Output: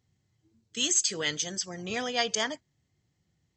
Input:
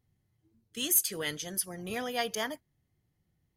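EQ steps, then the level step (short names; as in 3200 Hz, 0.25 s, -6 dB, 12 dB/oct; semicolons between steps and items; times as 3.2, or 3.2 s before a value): HPF 61 Hz; brick-wall FIR low-pass 8200 Hz; high shelf 3400 Hz +9 dB; +2.0 dB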